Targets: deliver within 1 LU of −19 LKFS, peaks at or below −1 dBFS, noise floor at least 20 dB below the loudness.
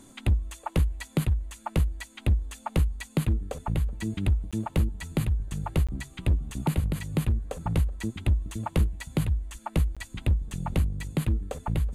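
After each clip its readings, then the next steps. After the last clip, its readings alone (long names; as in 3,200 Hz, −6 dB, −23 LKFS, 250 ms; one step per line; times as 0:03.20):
share of clipped samples 1.3%; peaks flattened at −16.5 dBFS; number of dropouts 3; longest dropout 16 ms; integrated loudness −29.5 LKFS; sample peak −16.5 dBFS; target loudness −19.0 LKFS
→ clipped peaks rebuilt −16.5 dBFS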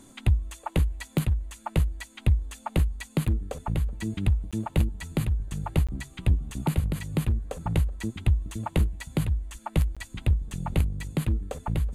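share of clipped samples 0.0%; number of dropouts 3; longest dropout 16 ms
→ repair the gap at 0:04.51/0:05.87/0:09.95, 16 ms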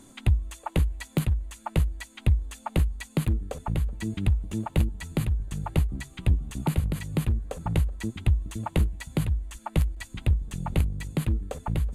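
number of dropouts 0; integrated loudness −29.0 LKFS; sample peak −10.0 dBFS; target loudness −19.0 LKFS
→ level +10 dB
brickwall limiter −1 dBFS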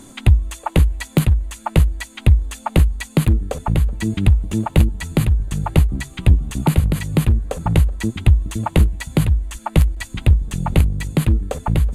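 integrated loudness −19.0 LKFS; sample peak −1.0 dBFS; background noise floor −42 dBFS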